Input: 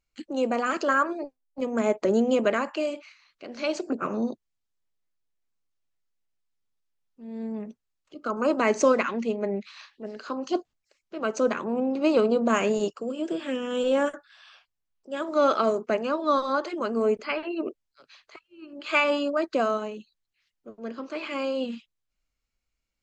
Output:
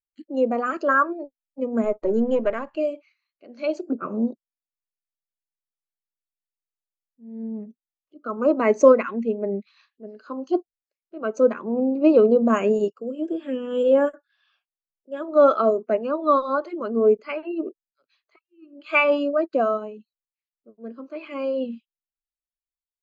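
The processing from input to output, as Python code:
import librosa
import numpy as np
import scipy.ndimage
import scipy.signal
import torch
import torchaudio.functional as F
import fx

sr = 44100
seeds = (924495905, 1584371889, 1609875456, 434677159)

y = fx.halfwave_gain(x, sr, db=-7.0, at=(1.84, 2.77))
y = fx.spectral_expand(y, sr, expansion=1.5)
y = y * 10.0 ** (6.0 / 20.0)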